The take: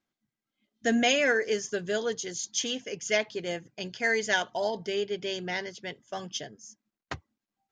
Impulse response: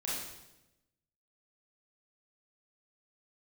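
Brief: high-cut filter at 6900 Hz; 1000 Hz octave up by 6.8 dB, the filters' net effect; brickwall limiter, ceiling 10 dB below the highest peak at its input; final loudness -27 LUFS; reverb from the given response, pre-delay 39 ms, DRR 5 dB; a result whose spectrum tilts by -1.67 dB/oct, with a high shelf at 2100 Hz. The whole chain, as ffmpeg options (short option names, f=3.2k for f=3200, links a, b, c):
-filter_complex "[0:a]lowpass=6.9k,equalizer=f=1k:t=o:g=8.5,highshelf=f=2.1k:g=9,alimiter=limit=-16dB:level=0:latency=1,asplit=2[a][b];[1:a]atrim=start_sample=2205,adelay=39[c];[b][c]afir=irnorm=-1:irlink=0,volume=-8.5dB[d];[a][d]amix=inputs=2:normalize=0,volume=-0.5dB"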